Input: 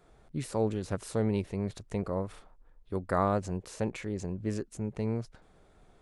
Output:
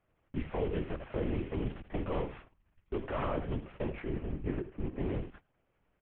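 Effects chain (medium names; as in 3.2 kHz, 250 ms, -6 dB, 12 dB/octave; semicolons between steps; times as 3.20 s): CVSD coder 16 kbps; 3.94–5.07 s: distance through air 340 m; delay 78 ms -12.5 dB; peak limiter -23.5 dBFS, peak gain reduction 7 dB; LPC vocoder at 8 kHz whisper; gate -50 dBFS, range -16 dB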